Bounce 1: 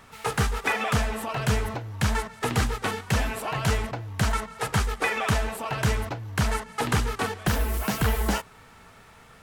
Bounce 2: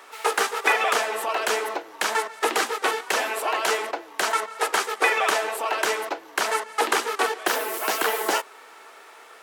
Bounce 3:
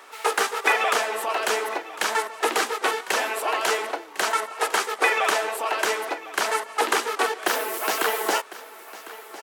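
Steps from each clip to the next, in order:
Chebyshev high-pass 340 Hz, order 4; gain +6 dB
echo 1.053 s -17 dB

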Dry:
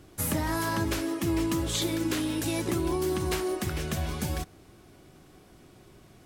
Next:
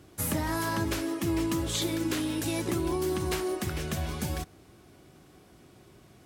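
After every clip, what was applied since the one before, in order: HPF 46 Hz; gain -1 dB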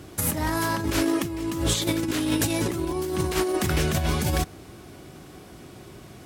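negative-ratio compressor -32 dBFS, ratio -0.5; gain +8 dB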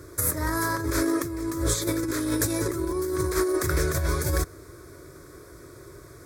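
fixed phaser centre 780 Hz, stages 6; gain +2 dB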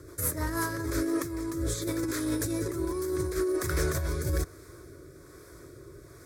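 in parallel at -4 dB: soft clip -23 dBFS, distortion -13 dB; on the sum: requantised 12-bit, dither none; rotary speaker horn 6.7 Hz, later 1.2 Hz, at 0.26; gain -5.5 dB

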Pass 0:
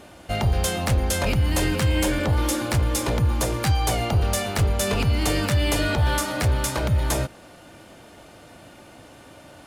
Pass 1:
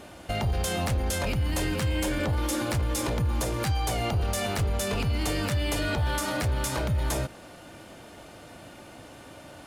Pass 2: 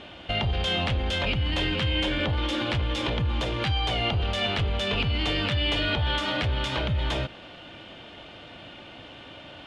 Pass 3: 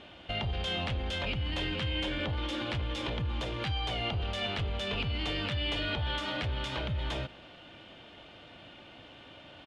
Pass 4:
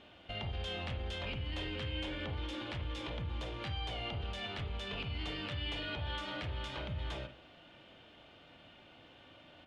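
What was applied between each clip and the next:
limiter -20 dBFS, peak gain reduction 6.5 dB
synth low-pass 3200 Hz, resonance Q 3.8
outdoor echo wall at 32 m, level -27 dB; gain -7 dB
reverb, pre-delay 36 ms, DRR 6.5 dB; gain -7.5 dB

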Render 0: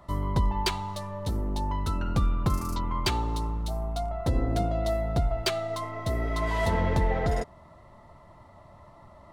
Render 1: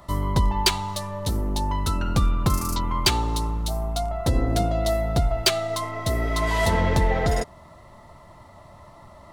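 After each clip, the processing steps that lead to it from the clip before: high shelf 3200 Hz +8.5 dB; gain +4 dB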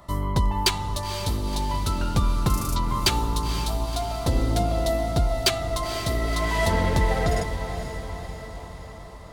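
diffused feedback echo 0.498 s, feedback 60%, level -9 dB; gain -1.5 dB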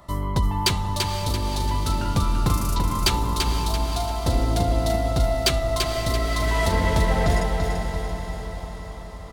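feedback echo 0.338 s, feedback 41%, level -5 dB

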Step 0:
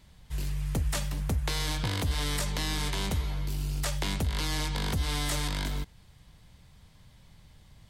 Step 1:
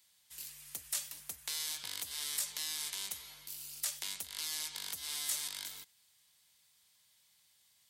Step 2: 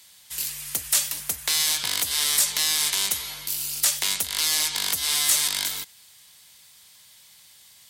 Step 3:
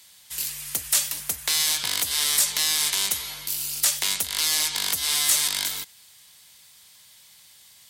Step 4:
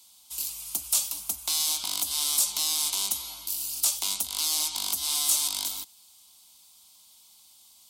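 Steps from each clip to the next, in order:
differentiator
sine folder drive 7 dB, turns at -19.5 dBFS; gain +6.5 dB
nothing audible
fixed phaser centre 480 Hz, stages 6; gain -2.5 dB

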